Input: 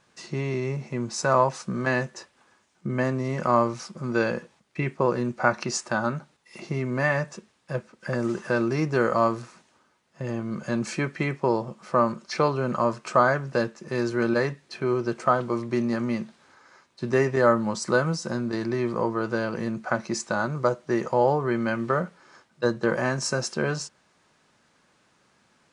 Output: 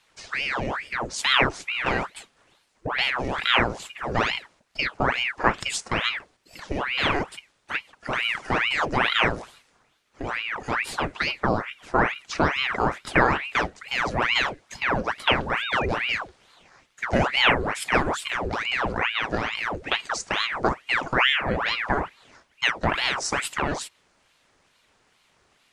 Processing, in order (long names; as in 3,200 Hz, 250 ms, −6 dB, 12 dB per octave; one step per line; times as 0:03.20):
sound drawn into the spectrogram rise, 0:15.46–0:15.86, 500–2,300 Hz −32 dBFS
ring modulator whose carrier an LFO sweeps 1,400 Hz, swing 90%, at 2.3 Hz
level +3 dB